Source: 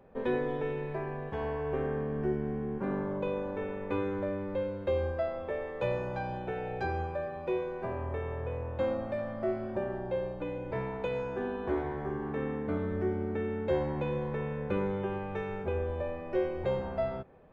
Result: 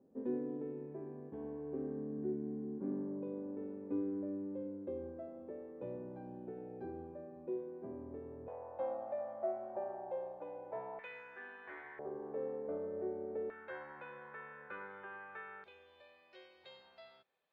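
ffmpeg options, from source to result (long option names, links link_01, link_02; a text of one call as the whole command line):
ffmpeg -i in.wav -af "asetnsamples=nb_out_samples=441:pad=0,asendcmd='8.48 bandpass f 730;10.99 bandpass f 1900;11.99 bandpass f 530;13.5 bandpass f 1500;15.64 bandpass f 4100',bandpass=frequency=280:width_type=q:width=3.5:csg=0" out.wav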